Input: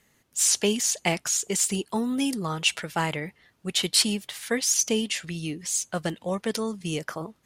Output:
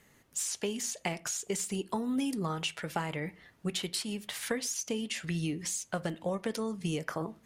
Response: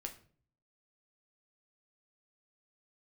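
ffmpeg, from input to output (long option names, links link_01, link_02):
-filter_complex "[0:a]acompressor=threshold=-32dB:ratio=10,asplit=2[link_01][link_02];[1:a]atrim=start_sample=2205,afade=type=out:start_time=0.19:duration=0.01,atrim=end_sample=8820,lowpass=2800[link_03];[link_02][link_03]afir=irnorm=-1:irlink=0,volume=-3.5dB[link_04];[link_01][link_04]amix=inputs=2:normalize=0"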